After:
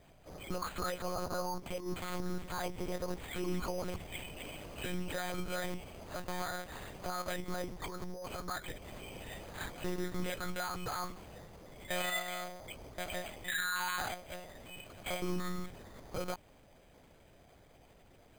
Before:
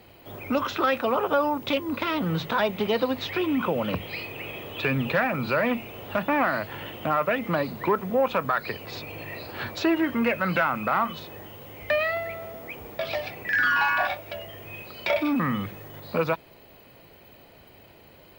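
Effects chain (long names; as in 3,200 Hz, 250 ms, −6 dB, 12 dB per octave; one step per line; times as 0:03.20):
brickwall limiter −20.5 dBFS, peak gain reduction 8.5 dB
0:07.83–0:08.43: compressor whose output falls as the input rises −33 dBFS, ratio −1
0:11.97–0:12.54: flutter between parallel walls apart 6.2 metres, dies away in 0.42 s
one-pitch LPC vocoder at 8 kHz 180 Hz
bad sample-rate conversion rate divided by 8×, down filtered, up hold
level −8 dB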